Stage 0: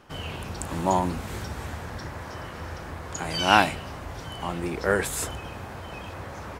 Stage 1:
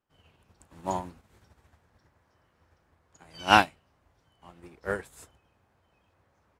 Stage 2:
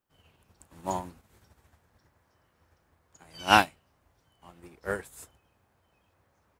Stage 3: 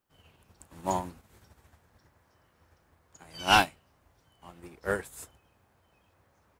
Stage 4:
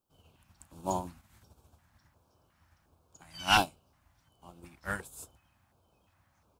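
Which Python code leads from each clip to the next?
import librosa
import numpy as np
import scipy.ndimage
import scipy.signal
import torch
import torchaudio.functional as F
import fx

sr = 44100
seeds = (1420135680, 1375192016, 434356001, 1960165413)

y1 = fx.upward_expand(x, sr, threshold_db=-36.0, expansion=2.5)
y1 = y1 * 10.0 ** (1.5 / 20.0)
y2 = fx.high_shelf(y1, sr, hz=9100.0, db=10.5)
y2 = y2 * 10.0 ** (-1.0 / 20.0)
y3 = 10.0 ** (-14.0 / 20.0) * np.tanh(y2 / 10.0 ** (-14.0 / 20.0))
y3 = y3 * 10.0 ** (2.5 / 20.0)
y4 = fx.filter_lfo_notch(y3, sr, shape='square', hz=1.4, low_hz=440.0, high_hz=1900.0, q=0.83)
y4 = y4 * 10.0 ** (-1.5 / 20.0)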